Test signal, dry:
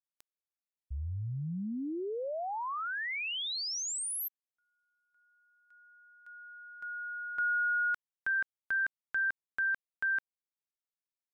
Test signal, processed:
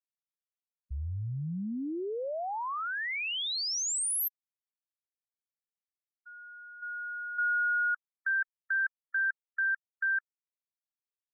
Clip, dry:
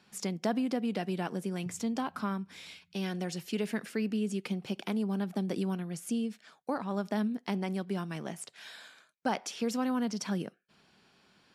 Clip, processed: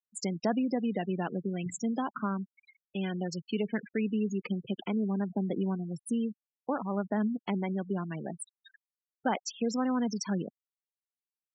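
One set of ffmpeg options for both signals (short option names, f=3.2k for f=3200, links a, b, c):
-af "afftfilt=real='re*gte(hypot(re,im),0.02)':imag='im*gte(hypot(re,im),0.02)':win_size=1024:overlap=0.75,highshelf=f=6k:g=5,volume=1.5dB"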